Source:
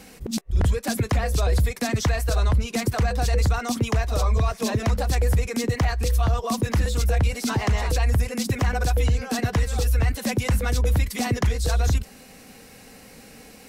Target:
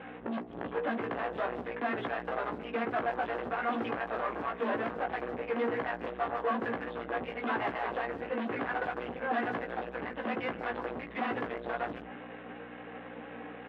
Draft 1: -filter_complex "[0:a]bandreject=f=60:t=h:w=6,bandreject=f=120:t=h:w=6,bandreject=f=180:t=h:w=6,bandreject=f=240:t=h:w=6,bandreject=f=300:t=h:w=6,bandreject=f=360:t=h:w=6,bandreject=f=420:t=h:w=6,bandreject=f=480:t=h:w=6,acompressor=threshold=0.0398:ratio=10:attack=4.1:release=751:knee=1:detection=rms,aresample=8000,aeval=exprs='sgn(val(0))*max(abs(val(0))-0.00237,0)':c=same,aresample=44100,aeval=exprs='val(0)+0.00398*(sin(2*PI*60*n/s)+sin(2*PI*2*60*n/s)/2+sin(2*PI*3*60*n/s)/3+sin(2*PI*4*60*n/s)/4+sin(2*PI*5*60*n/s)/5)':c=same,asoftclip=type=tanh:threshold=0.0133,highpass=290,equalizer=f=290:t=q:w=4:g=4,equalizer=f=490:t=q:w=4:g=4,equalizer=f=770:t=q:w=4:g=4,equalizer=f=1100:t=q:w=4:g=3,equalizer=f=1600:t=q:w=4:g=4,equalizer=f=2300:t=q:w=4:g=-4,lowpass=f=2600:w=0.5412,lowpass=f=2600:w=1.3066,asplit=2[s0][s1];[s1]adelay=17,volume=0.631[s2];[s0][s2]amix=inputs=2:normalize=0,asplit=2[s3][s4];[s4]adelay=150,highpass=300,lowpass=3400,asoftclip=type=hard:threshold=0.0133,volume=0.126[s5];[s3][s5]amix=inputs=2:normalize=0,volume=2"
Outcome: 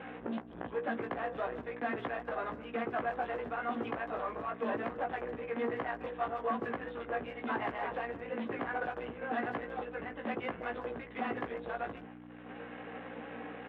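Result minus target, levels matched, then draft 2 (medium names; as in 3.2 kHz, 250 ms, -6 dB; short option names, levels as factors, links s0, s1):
compression: peak gain reduction +8.5 dB
-filter_complex "[0:a]bandreject=f=60:t=h:w=6,bandreject=f=120:t=h:w=6,bandreject=f=180:t=h:w=6,bandreject=f=240:t=h:w=6,bandreject=f=300:t=h:w=6,bandreject=f=360:t=h:w=6,bandreject=f=420:t=h:w=6,bandreject=f=480:t=h:w=6,acompressor=threshold=0.119:ratio=10:attack=4.1:release=751:knee=1:detection=rms,aresample=8000,aeval=exprs='sgn(val(0))*max(abs(val(0))-0.00237,0)':c=same,aresample=44100,aeval=exprs='val(0)+0.00398*(sin(2*PI*60*n/s)+sin(2*PI*2*60*n/s)/2+sin(2*PI*3*60*n/s)/3+sin(2*PI*4*60*n/s)/4+sin(2*PI*5*60*n/s)/5)':c=same,asoftclip=type=tanh:threshold=0.0133,highpass=290,equalizer=f=290:t=q:w=4:g=4,equalizer=f=490:t=q:w=4:g=4,equalizer=f=770:t=q:w=4:g=4,equalizer=f=1100:t=q:w=4:g=3,equalizer=f=1600:t=q:w=4:g=4,equalizer=f=2300:t=q:w=4:g=-4,lowpass=f=2600:w=0.5412,lowpass=f=2600:w=1.3066,asplit=2[s0][s1];[s1]adelay=17,volume=0.631[s2];[s0][s2]amix=inputs=2:normalize=0,asplit=2[s3][s4];[s4]adelay=150,highpass=300,lowpass=3400,asoftclip=type=hard:threshold=0.0133,volume=0.126[s5];[s3][s5]amix=inputs=2:normalize=0,volume=2"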